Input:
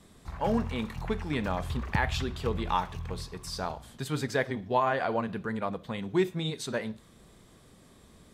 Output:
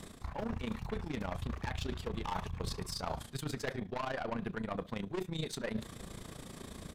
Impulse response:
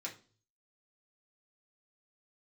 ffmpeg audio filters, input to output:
-filter_complex "[0:a]atempo=1.2,asplit=2[a][b];[b]aeval=exprs='0.224*sin(PI/2*3.98*val(0)/0.224)':c=same,volume=-11.5dB[c];[a][c]amix=inputs=2:normalize=0,tremolo=f=28:d=0.75,aeval=exprs='0.251*(cos(1*acos(clip(val(0)/0.251,-1,1)))-cos(1*PI/2))+0.0126*(cos(8*acos(clip(val(0)/0.251,-1,1)))-cos(8*PI/2))':c=same,areverse,acompressor=threshold=-38dB:ratio=12,areverse,volume=4dB"

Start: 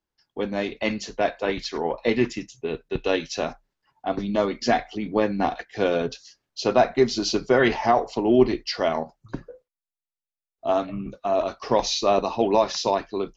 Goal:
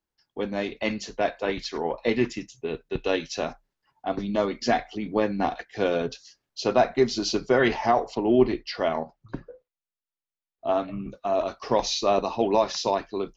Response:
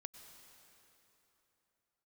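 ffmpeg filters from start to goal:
-filter_complex "[0:a]asettb=1/sr,asplit=3[a][b][c];[a]atrim=end=8.154[d];[b]atrim=start=8.15:end=10.88,asetpts=PTS-STARTPTS,afade=t=in:d=0.004:c=qsin,afade=t=out:st=2.726:d=0.004:c=qsin,lowpass=4.2k[e];[c]atrim=start=10.876[f];[d][e]acrossfade=d=0.004:c1=hsin:c2=qsin[g];[g][f]acrossfade=d=0.004:c1=qsin:c2=hsin,volume=-2dB"

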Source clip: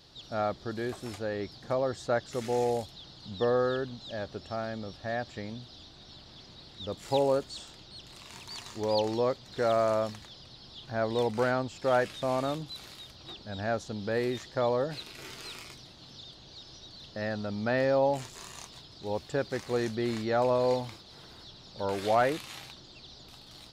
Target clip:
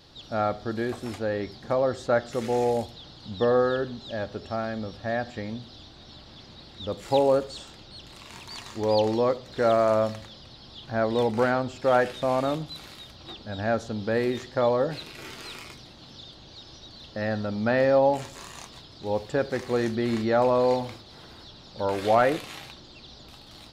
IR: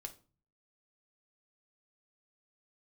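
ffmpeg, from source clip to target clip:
-filter_complex "[0:a]asplit=2[a][b];[1:a]atrim=start_sample=2205,asetrate=27783,aresample=44100,lowpass=4k[c];[b][c]afir=irnorm=-1:irlink=0,volume=-3.5dB[d];[a][d]amix=inputs=2:normalize=0,volume=1.5dB"

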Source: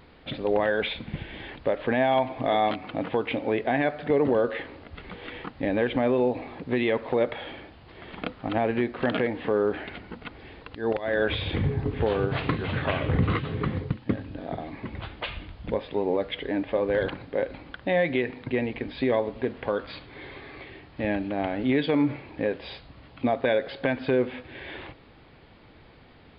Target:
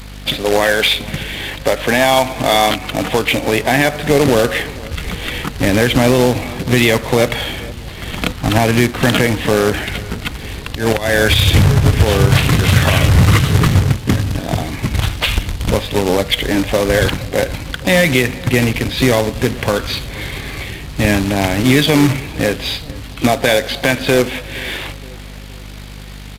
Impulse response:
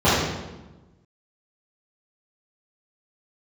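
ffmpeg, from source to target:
-filter_complex "[0:a]acrossover=split=160[a][b];[a]dynaudnorm=f=450:g=17:m=14dB[c];[c][b]amix=inputs=2:normalize=0,crystalizer=i=6.5:c=0,aeval=exprs='val(0)+0.01*(sin(2*PI*50*n/s)+sin(2*PI*2*50*n/s)/2+sin(2*PI*3*50*n/s)/3+sin(2*PI*4*50*n/s)/4+sin(2*PI*5*50*n/s)/5)':c=same,acrusher=bits=2:mode=log:mix=0:aa=0.000001,asplit=2[d][e];[e]asetrate=58866,aresample=44100,atempo=0.749154,volume=-15dB[f];[d][f]amix=inputs=2:normalize=0,asplit=2[g][h];[h]adelay=467,lowpass=f=2k:p=1,volume=-22dB,asplit=2[i][j];[j]adelay=467,lowpass=f=2k:p=1,volume=0.51,asplit=2[k][l];[l]adelay=467,lowpass=f=2k:p=1,volume=0.51,asplit=2[m][n];[n]adelay=467,lowpass=f=2k:p=1,volume=0.51[o];[i][k][m][o]amix=inputs=4:normalize=0[p];[g][p]amix=inputs=2:normalize=0,aresample=32000,aresample=44100,alimiter=level_in=9.5dB:limit=-1dB:release=50:level=0:latency=1,volume=-1dB"

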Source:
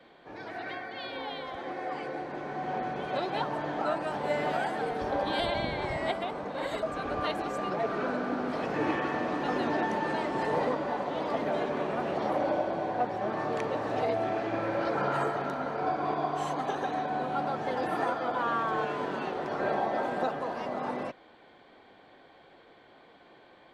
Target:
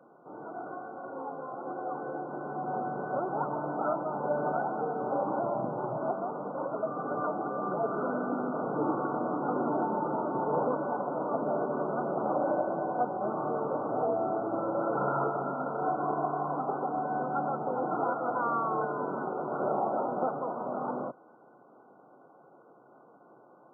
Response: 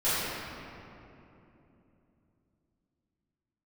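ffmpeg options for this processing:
-af "afftfilt=real='re*between(b*sr/4096,110,1500)':imag='im*between(b*sr/4096,110,1500)':win_size=4096:overlap=0.75"

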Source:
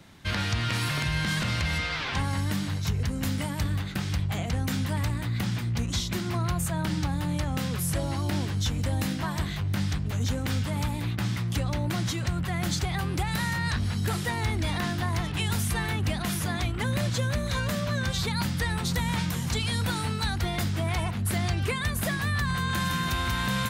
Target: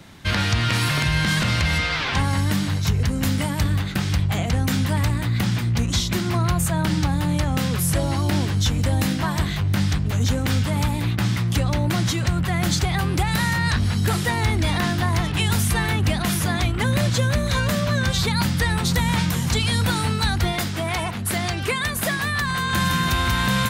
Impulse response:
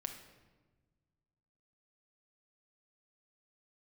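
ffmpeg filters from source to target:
-filter_complex "[0:a]asettb=1/sr,asplit=3[a][b][c];[a]atrim=end=20.524[d];[b]atrim=start=20.52:end=22.73,asetpts=PTS-STARTPTS,afade=t=in:d=0.004:c=qsin,afade=t=out:st=2.206:d=0.004:c=qsin,lowshelf=f=150:g=-11.5[e];[c]atrim=start=22.726[f];[d][e]acrossfade=d=0.004:c1=hsin:c2=qsin[g];[g][f]acrossfade=d=0.004:c1=qsin:c2=hsin,volume=7dB"

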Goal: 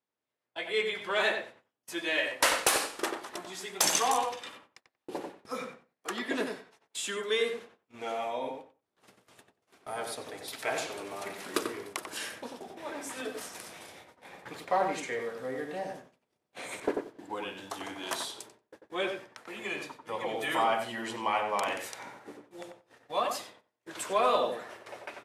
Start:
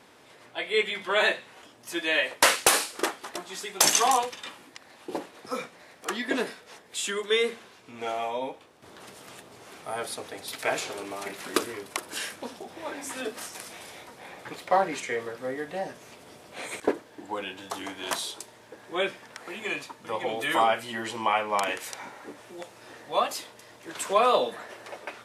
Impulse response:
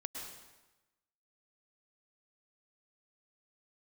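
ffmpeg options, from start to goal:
-filter_complex "[0:a]agate=range=-33dB:threshold=-44dB:ratio=16:detection=peak,asplit=2[a][b];[b]asoftclip=type=tanh:threshold=-24dB,volume=-10.5dB[c];[a][c]amix=inputs=2:normalize=0,asplit=2[d][e];[e]adelay=92,lowpass=f=1.7k:p=1,volume=-4dB,asplit=2[f][g];[g]adelay=92,lowpass=f=1.7k:p=1,volume=0.17,asplit=2[h][i];[i]adelay=92,lowpass=f=1.7k:p=1,volume=0.17[j];[d][f][h][j]amix=inputs=4:normalize=0,volume=-6.5dB"

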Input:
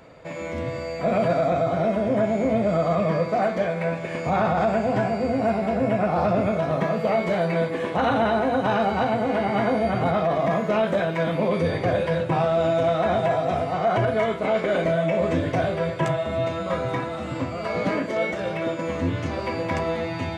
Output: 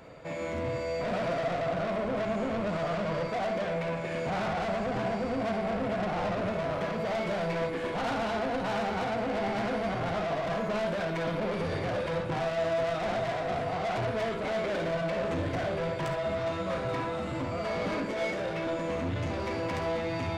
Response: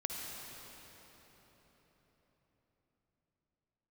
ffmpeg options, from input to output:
-filter_complex "[0:a]asoftclip=type=tanh:threshold=-27.5dB[a];[1:a]atrim=start_sample=2205,atrim=end_sample=3528[b];[a][b]afir=irnorm=-1:irlink=0"

